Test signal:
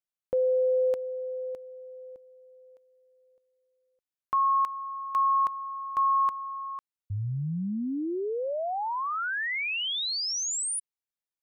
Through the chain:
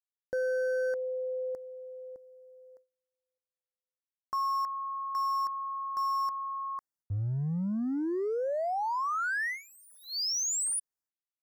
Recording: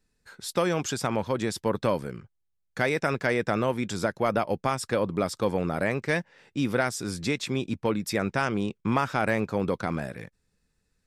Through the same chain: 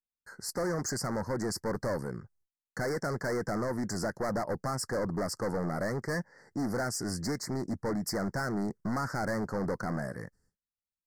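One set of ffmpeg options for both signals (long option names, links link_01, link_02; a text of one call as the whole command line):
ffmpeg -i in.wav -af "agate=range=-33dB:threshold=-55dB:ratio=3:release=187:detection=rms,volume=28.5dB,asoftclip=hard,volume=-28.5dB,asuperstop=centerf=3000:order=12:qfactor=1.2" out.wav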